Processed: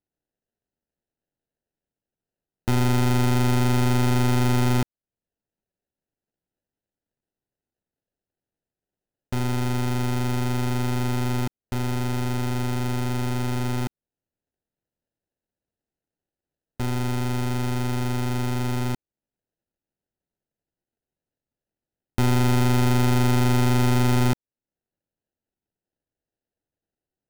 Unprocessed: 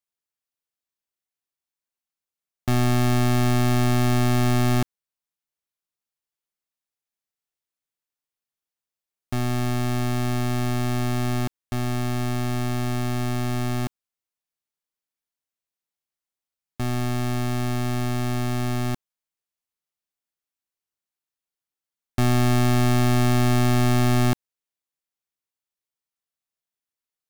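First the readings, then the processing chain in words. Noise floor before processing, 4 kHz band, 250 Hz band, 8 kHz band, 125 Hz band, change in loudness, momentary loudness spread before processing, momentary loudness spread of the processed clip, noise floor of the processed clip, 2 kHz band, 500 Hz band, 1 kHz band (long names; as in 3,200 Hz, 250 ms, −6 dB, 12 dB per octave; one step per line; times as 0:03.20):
below −85 dBFS, −0.5 dB, −0.5 dB, −0.5 dB, 0.0 dB, −0.5 dB, 9 LU, 9 LU, below −85 dBFS, −1.0 dB, −0.5 dB, −1.0 dB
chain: treble cut that deepens with the level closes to 860 Hz, closed at −24 dBFS
decimation without filtering 39×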